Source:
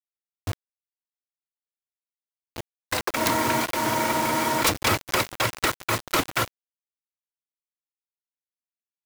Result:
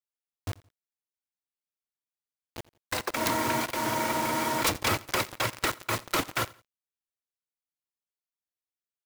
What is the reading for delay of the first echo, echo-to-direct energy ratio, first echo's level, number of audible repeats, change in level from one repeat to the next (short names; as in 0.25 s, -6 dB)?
85 ms, -22.0 dB, -22.5 dB, 2, -9.5 dB